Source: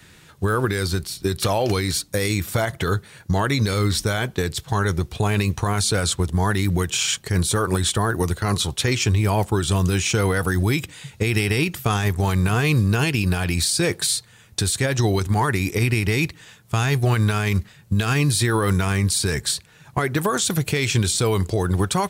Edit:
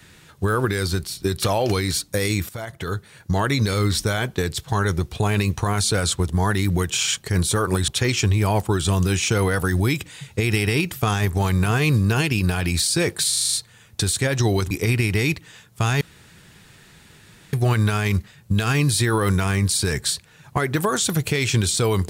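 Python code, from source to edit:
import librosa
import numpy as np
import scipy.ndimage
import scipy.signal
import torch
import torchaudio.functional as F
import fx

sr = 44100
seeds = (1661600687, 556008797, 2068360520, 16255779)

y = fx.edit(x, sr, fx.fade_in_from(start_s=2.49, length_s=0.94, floor_db=-13.5),
    fx.cut(start_s=7.88, length_s=0.83),
    fx.stutter(start_s=14.12, slice_s=0.04, count=7),
    fx.cut(start_s=15.3, length_s=0.34),
    fx.insert_room_tone(at_s=16.94, length_s=1.52), tone=tone)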